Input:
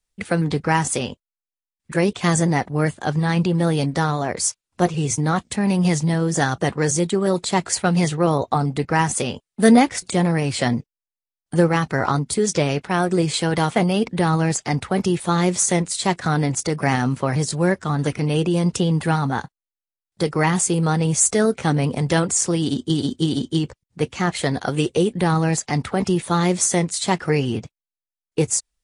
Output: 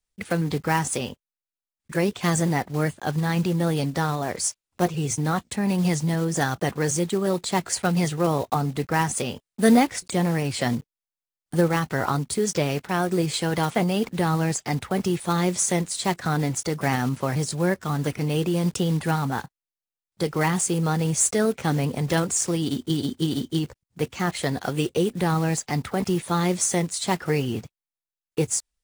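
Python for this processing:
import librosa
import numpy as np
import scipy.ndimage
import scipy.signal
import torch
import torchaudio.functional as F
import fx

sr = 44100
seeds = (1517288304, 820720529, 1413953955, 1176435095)

y = fx.block_float(x, sr, bits=5)
y = y * librosa.db_to_amplitude(-4.0)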